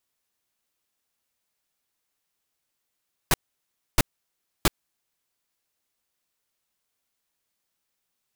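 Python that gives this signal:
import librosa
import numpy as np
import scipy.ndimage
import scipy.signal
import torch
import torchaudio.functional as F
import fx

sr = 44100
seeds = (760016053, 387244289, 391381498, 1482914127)

y = fx.noise_burst(sr, seeds[0], colour='pink', on_s=0.03, off_s=0.64, bursts=3, level_db=-17.5)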